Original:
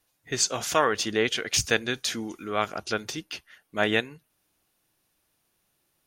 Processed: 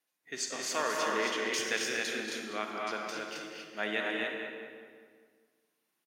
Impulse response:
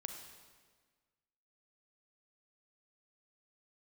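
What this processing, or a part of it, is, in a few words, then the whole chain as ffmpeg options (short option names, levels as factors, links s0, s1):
stadium PA: -filter_complex "[0:a]highpass=f=190:w=0.5412,highpass=f=190:w=1.3066,equalizer=f=2000:t=o:w=0.79:g=5,aecho=1:1:233.2|268.2:0.447|0.708[s0];[1:a]atrim=start_sample=2205[s1];[s0][s1]afir=irnorm=-1:irlink=0,asplit=2[s2][s3];[s3]adelay=199,lowpass=f=2200:p=1,volume=0.531,asplit=2[s4][s5];[s5]adelay=199,lowpass=f=2200:p=1,volume=0.49,asplit=2[s6][s7];[s7]adelay=199,lowpass=f=2200:p=1,volume=0.49,asplit=2[s8][s9];[s9]adelay=199,lowpass=f=2200:p=1,volume=0.49,asplit=2[s10][s11];[s11]adelay=199,lowpass=f=2200:p=1,volume=0.49,asplit=2[s12][s13];[s13]adelay=199,lowpass=f=2200:p=1,volume=0.49[s14];[s2][s4][s6][s8][s10][s12][s14]amix=inputs=7:normalize=0,volume=0.376"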